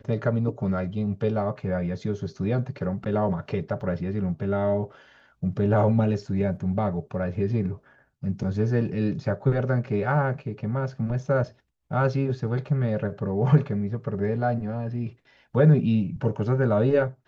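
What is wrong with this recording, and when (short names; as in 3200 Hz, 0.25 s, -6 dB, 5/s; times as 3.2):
3.81 gap 3.5 ms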